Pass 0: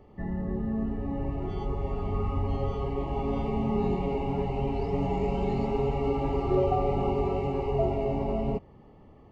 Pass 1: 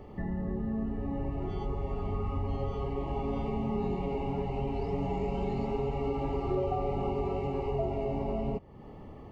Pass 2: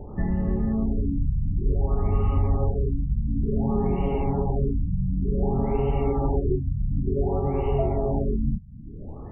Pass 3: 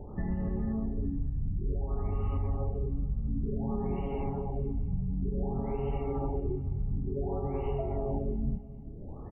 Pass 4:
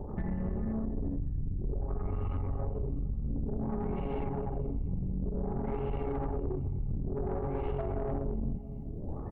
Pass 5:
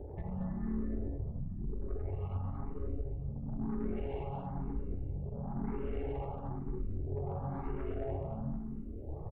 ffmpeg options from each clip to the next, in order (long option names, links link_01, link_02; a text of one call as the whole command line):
ffmpeg -i in.wav -af "acompressor=threshold=-44dB:ratio=2,volume=6.5dB" out.wav
ffmpeg -i in.wav -af "lowshelf=frequency=120:gain=8,afftfilt=real='re*lt(b*sr/1024,240*pow(3200/240,0.5+0.5*sin(2*PI*0.55*pts/sr)))':imag='im*lt(b*sr/1024,240*pow(3200/240,0.5+0.5*sin(2*PI*0.55*pts/sr)))':win_size=1024:overlap=0.75,volume=5.5dB" out.wav
ffmpeg -i in.wav -af "alimiter=limit=-18.5dB:level=0:latency=1:release=158,aecho=1:1:215|430|645|860|1075:0.126|0.0743|0.0438|0.0259|0.0153,volume=-5dB" out.wav
ffmpeg -i in.wav -af "acompressor=threshold=-34dB:ratio=2.5,aeval=exprs='(tanh(50.1*val(0)+0.45)-tanh(0.45))/50.1':channel_layout=same,volume=6.5dB" out.wav
ffmpeg -i in.wav -filter_complex "[0:a]asplit=2[link_01][link_02];[link_02]aecho=0:1:228|456|684|912:0.631|0.189|0.0568|0.017[link_03];[link_01][link_03]amix=inputs=2:normalize=0,asplit=2[link_04][link_05];[link_05]afreqshift=1[link_06];[link_04][link_06]amix=inputs=2:normalize=1,volume=-2.5dB" out.wav